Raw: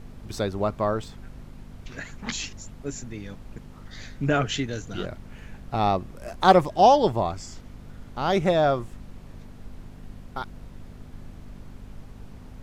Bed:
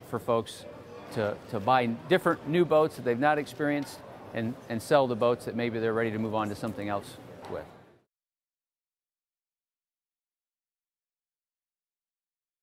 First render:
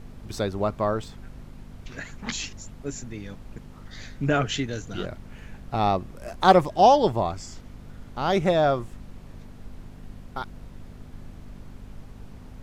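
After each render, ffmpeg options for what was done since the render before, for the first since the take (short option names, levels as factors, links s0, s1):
-af anull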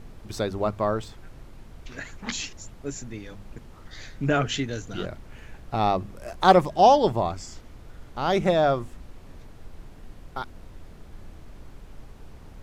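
-af "bandreject=f=50:t=h:w=4,bandreject=f=100:t=h:w=4,bandreject=f=150:t=h:w=4,bandreject=f=200:t=h:w=4,bandreject=f=250:t=h:w=4"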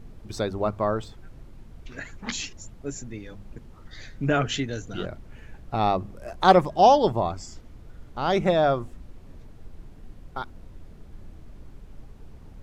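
-af "afftdn=nr=6:nf=-47"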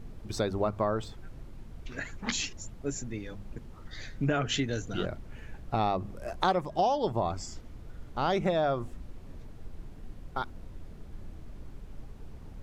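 -af "acompressor=threshold=0.0631:ratio=6"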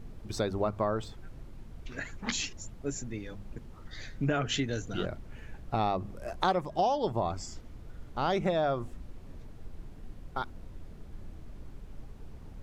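-af "volume=0.891"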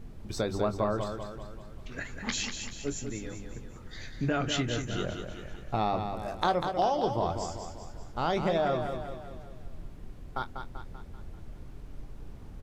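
-filter_complex "[0:a]asplit=2[s0][s1];[s1]adelay=24,volume=0.266[s2];[s0][s2]amix=inputs=2:normalize=0,aecho=1:1:194|388|582|776|970|1164:0.447|0.228|0.116|0.0593|0.0302|0.0154"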